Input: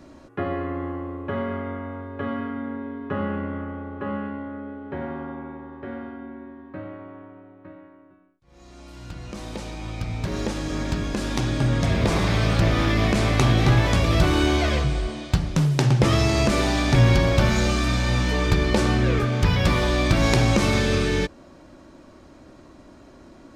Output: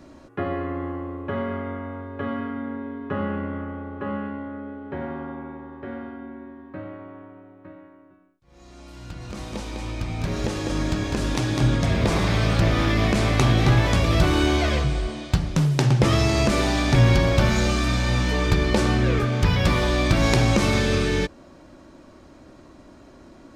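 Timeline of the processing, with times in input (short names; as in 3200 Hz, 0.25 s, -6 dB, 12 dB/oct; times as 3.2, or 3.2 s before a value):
9–11.76 echo 0.203 s -3.5 dB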